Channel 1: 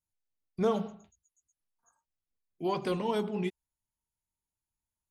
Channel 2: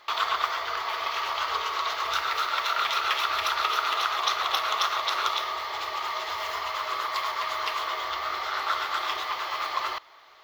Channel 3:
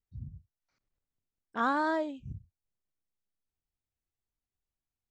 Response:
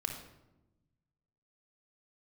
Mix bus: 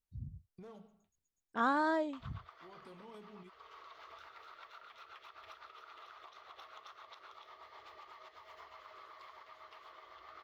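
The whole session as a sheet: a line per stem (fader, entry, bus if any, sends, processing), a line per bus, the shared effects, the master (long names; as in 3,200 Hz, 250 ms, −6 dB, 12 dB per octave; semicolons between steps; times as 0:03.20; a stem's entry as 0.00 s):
−5.0 dB, 0.00 s, bus A, no send, gain into a clipping stage and back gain 23.5 dB; automatic ducking −14 dB, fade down 0.75 s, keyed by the third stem
−9.0 dB, 2.05 s, bus A, no send, high-shelf EQ 2,700 Hz −12 dB; rotating-speaker cabinet horn 8 Hz
−2.5 dB, 0.00 s, no bus, no send, no processing
bus A: 0.0 dB, sample-and-hold tremolo; downward compressor 6 to 1, threshold −52 dBFS, peak gain reduction 18.5 dB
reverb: not used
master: no processing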